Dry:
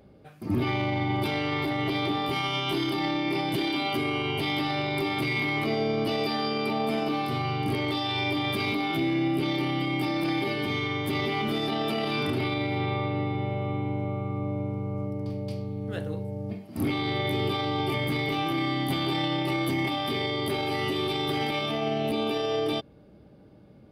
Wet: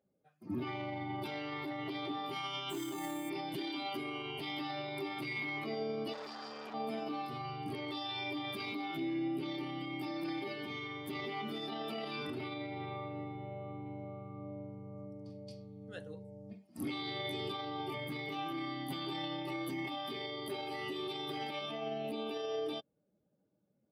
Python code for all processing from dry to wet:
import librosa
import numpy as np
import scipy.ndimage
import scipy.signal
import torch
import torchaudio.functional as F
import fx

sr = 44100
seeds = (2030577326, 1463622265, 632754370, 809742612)

y = fx.chain(x, sr, fx.highpass(hz=41.0, slope=12),
    fx.high_shelf(hz=5000.0, db=-5.5),
    fx.resample_bad(factor=4, down='none', up='hold'), at=(2.7, 3.3))
y = fx.chain(y, sr, fx.overload_stage(gain_db=23.5),
    fx.transformer_sat(knee_hz=710.0), at=(6.13, 6.74))
y = fx.chain(y, sr, fx.lowpass(hz=9800.0, slope=12),
    fx.high_shelf(hz=4200.0, db=8.5), at=(13.86, 17.52))
y = fx.bin_expand(y, sr, power=1.5)
y = scipy.signal.sosfilt(scipy.signal.butter(2, 160.0, 'highpass', fs=sr, output='sos'), y)
y = fx.notch(y, sr, hz=2300.0, q=29.0)
y = y * librosa.db_to_amplitude(-8.0)